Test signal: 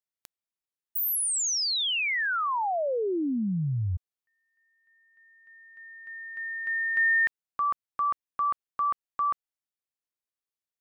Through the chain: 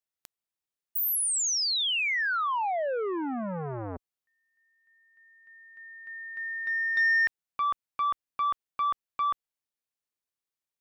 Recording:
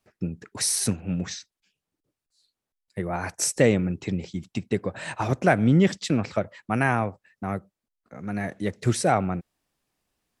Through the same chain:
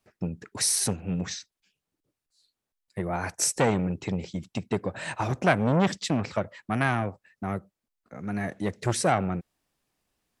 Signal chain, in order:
saturating transformer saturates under 990 Hz

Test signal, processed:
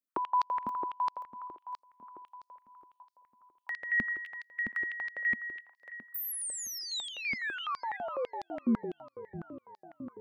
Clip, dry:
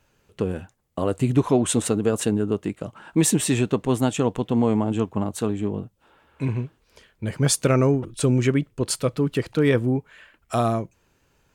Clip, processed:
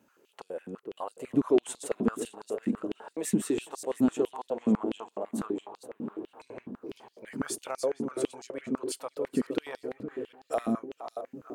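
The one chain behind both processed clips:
delay that plays each chunk backwards 295 ms, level −11 dB
parametric band 3,200 Hz −8 dB 3 octaves
downward compressor 1.5 to 1, threshold −47 dBFS
feedback echo with a low-pass in the loop 466 ms, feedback 77%, low-pass 1,500 Hz, level −11 dB
high-pass on a step sequencer 12 Hz 230–4,600 Hz

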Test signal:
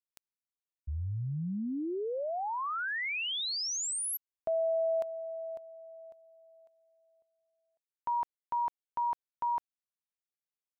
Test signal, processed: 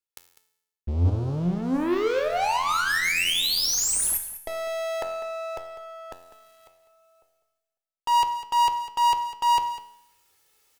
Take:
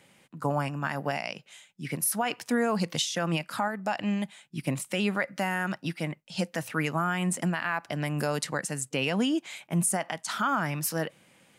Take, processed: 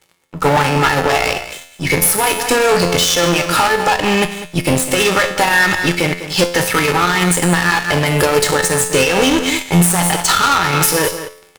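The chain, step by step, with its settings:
gain on one half-wave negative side −3 dB
comb filter 2.3 ms, depth 69%
leveller curve on the samples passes 5
reversed playback
upward compression, threshold −34 dBFS
reversed playback
tuned comb filter 87 Hz, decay 0.82 s, harmonics all, mix 80%
harmonic generator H 3 −11 dB, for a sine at −17 dBFS
on a send: single-tap delay 200 ms −14 dB
on the sum: boost into a limiter +27.5 dB
level −1 dB

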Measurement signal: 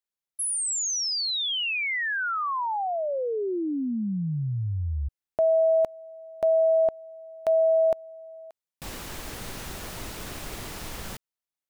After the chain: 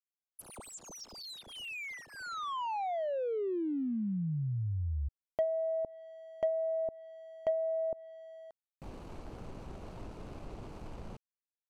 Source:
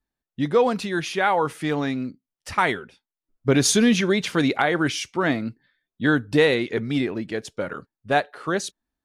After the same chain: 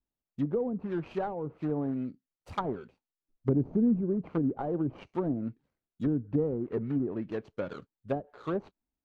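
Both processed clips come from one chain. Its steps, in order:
running median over 25 samples
treble cut that deepens with the level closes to 350 Hz, closed at −18.5 dBFS
level −5.5 dB

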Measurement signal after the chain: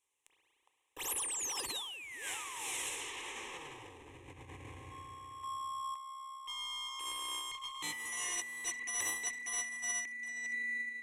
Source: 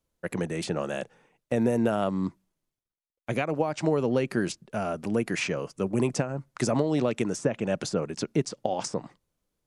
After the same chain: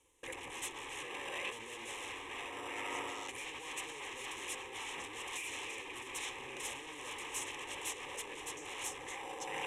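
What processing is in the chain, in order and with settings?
one-sided soft clipper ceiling −27.5 dBFS
dynamic equaliser 2,200 Hz, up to +6 dB, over −42 dBFS, Q 1
spring reverb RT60 3 s, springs 33/60 ms, chirp 40 ms, DRR 8 dB
gain into a clipping stage and back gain 27.5 dB
on a send: echo through a band-pass that steps 409 ms, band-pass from 770 Hz, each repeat 1.4 octaves, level −4.5 dB
on the sum: wave folding −37 dBFS
in parallel at −6.5 dB: decimation without filtering 20×
on the sum: low-pass filter 8,800 Hz 24 dB per octave
phaser with its sweep stopped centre 960 Hz, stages 8
compressor whose output falls as the input rises −50 dBFS, ratio −1
spectral tilt +3 dB per octave
level +5.5 dB

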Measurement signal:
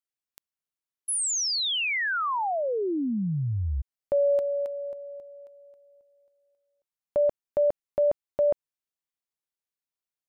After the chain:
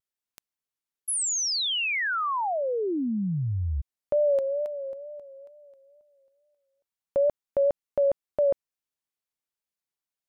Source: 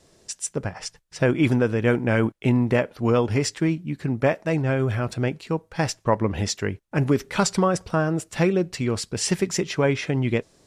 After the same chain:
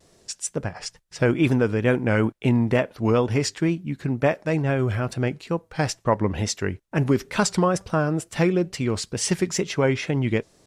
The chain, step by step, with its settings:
pitch vibrato 2.2 Hz 80 cents

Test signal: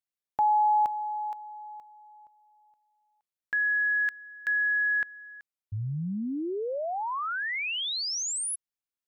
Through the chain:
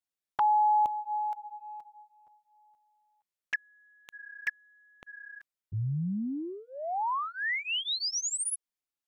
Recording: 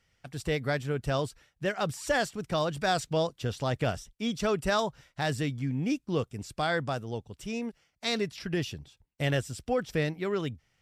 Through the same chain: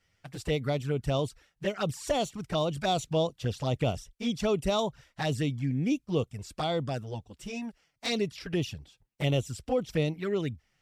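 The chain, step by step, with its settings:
flanger swept by the level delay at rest 11.1 ms, full sweep at −25.5 dBFS
level +2 dB

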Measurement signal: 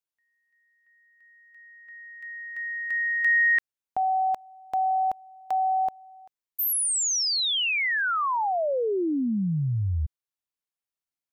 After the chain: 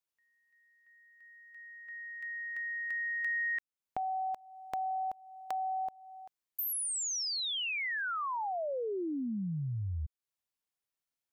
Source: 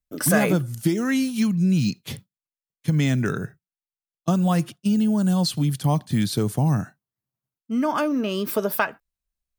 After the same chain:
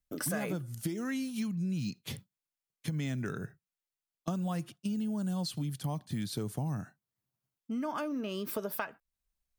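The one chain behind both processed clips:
downward compressor 2.5 to 1, threshold −39 dBFS

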